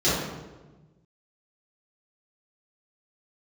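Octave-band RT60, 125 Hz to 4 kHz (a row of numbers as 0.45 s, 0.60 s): 1.8 s, 1.5 s, 1.3 s, 1.1 s, 0.90 s, 0.75 s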